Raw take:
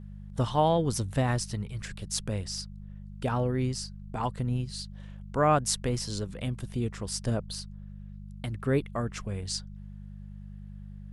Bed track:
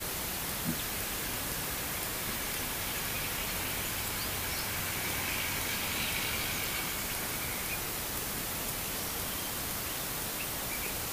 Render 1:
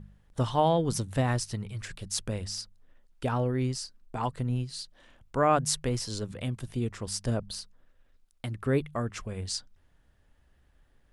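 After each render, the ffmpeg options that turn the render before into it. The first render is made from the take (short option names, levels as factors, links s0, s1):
-af "bandreject=f=50:t=h:w=4,bandreject=f=100:t=h:w=4,bandreject=f=150:t=h:w=4,bandreject=f=200:t=h:w=4"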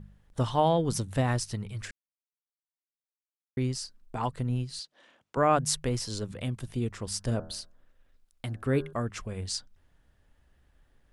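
-filter_complex "[0:a]asettb=1/sr,asplit=3[s0][s1][s2];[s0]atrim=end=4.794[s3];[s1]atrim=start=4.79:end=5.37,asetpts=PTS-STARTPTS,afade=t=in:d=0.004:c=qsin,afade=t=out:st=0.576:d=0.004:c=qsin,highpass=290,lowpass=7900[s4];[s2]atrim=start=5.366[s5];[s3][s4]acrossfade=d=0.004:c1=hsin:c2=qsin[s6];[s6][s5]acrossfade=d=0.004:c1=qsin:c2=hsin,asettb=1/sr,asplit=3[s7][s8][s9];[s7]atrim=end=7.074[s10];[s8]atrim=start=7.07:end=8.93,asetpts=PTS-STARTPTS,afade=t=in:d=0.004:c=qsin,afade=t=out:st=1.856:d=0.004:c=qsin,bandreject=f=80.6:t=h:w=4,bandreject=f=161.2:t=h:w=4,bandreject=f=241.8:t=h:w=4,bandreject=f=322.4:t=h:w=4,bandreject=f=403:t=h:w=4,bandreject=f=483.6:t=h:w=4,bandreject=f=564.2:t=h:w=4,bandreject=f=644.8:t=h:w=4,bandreject=f=725.4:t=h:w=4,bandreject=f=806:t=h:w=4,bandreject=f=886.6:t=h:w=4,bandreject=f=967.2:t=h:w=4,bandreject=f=1047.8:t=h:w=4,bandreject=f=1128.4:t=h:w=4,bandreject=f=1209:t=h:w=4,bandreject=f=1289.6:t=h:w=4,bandreject=f=1370.2:t=h:w=4,bandreject=f=1450.8:t=h:w=4,bandreject=f=1531.4:t=h:w=4,bandreject=f=1612:t=h:w=4,bandreject=f=1692.6:t=h:w=4[s11];[s9]atrim=start=8.926[s12];[s10][s11]acrossfade=d=0.004:c1=hsin:c2=qsin[s13];[s13][s12]acrossfade=d=0.004:c1=qsin:c2=hsin,asplit=3[s14][s15][s16];[s14]atrim=end=1.91,asetpts=PTS-STARTPTS,afade=t=out:st=1.906:d=0.004:c=hsin[s17];[s15]atrim=start=1.91:end=3.57,asetpts=PTS-STARTPTS,volume=0[s18];[s16]atrim=start=3.57,asetpts=PTS-STARTPTS,afade=t=in:d=0.004:c=hsin[s19];[s17][s18][s19]concat=n=3:v=0:a=1"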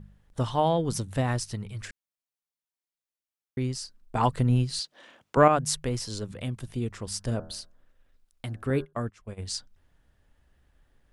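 -filter_complex "[0:a]asettb=1/sr,asplit=3[s0][s1][s2];[s0]atrim=end=4.154[s3];[s1]atrim=start=4.15:end=5.48,asetpts=PTS-STARTPTS,afade=t=in:d=0.004:c=qsin,afade=t=out:st=1.326:d=0.004:c=qsin,acontrast=87[s4];[s2]atrim=start=5.476[s5];[s3][s4]acrossfade=d=0.004:c1=hsin:c2=qsin[s6];[s6][s5]acrossfade=d=0.004:c1=qsin:c2=hsin,asettb=1/sr,asplit=3[s7][s8][s9];[s7]atrim=end=8.704[s10];[s8]atrim=start=8.7:end=9.46,asetpts=PTS-STARTPTS,afade=t=in:d=0.004:c=qsin,afade=t=out:st=0.756:d=0.004:c=qsin,agate=range=0.126:threshold=0.0158:ratio=16:release=100:detection=peak[s11];[s9]atrim=start=9.456[s12];[s10][s11]acrossfade=d=0.004:c1=hsin:c2=qsin[s13];[s13][s12]acrossfade=d=0.004:c1=qsin:c2=hsin"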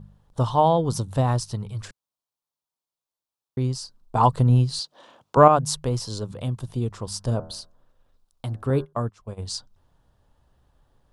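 -af "equalizer=f=125:t=o:w=1:g=6,equalizer=f=500:t=o:w=1:g=3,equalizer=f=1000:t=o:w=1:g=9,equalizer=f=2000:t=o:w=1:g=-9,equalizer=f=4000:t=o:w=1:g=4"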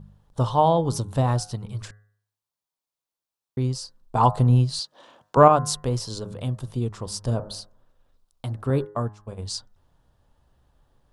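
-af "bandreject=f=104.1:t=h:w=4,bandreject=f=208.2:t=h:w=4,bandreject=f=312.3:t=h:w=4,bandreject=f=416.4:t=h:w=4,bandreject=f=520.5:t=h:w=4,bandreject=f=624.6:t=h:w=4,bandreject=f=728.7:t=h:w=4,bandreject=f=832.8:t=h:w=4,bandreject=f=936.9:t=h:w=4,bandreject=f=1041:t=h:w=4,bandreject=f=1145.1:t=h:w=4,bandreject=f=1249.2:t=h:w=4,bandreject=f=1353.3:t=h:w=4,bandreject=f=1457.4:t=h:w=4,bandreject=f=1561.5:t=h:w=4,bandreject=f=1665.6:t=h:w=4,bandreject=f=1769.7:t=h:w=4,bandreject=f=1873.8:t=h:w=4,bandreject=f=1977.9:t=h:w=4"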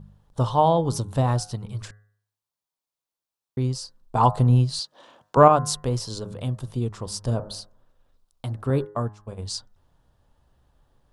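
-af anull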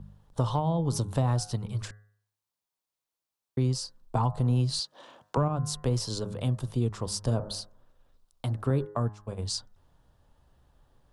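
-filter_complex "[0:a]acrossover=split=220[s0][s1];[s0]alimiter=limit=0.0794:level=0:latency=1[s2];[s1]acompressor=threshold=0.0447:ratio=20[s3];[s2][s3]amix=inputs=2:normalize=0"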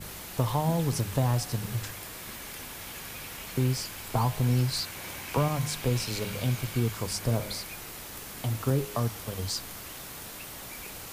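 -filter_complex "[1:a]volume=0.501[s0];[0:a][s0]amix=inputs=2:normalize=0"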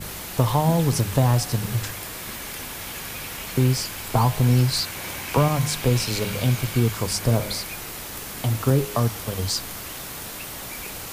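-af "volume=2.24"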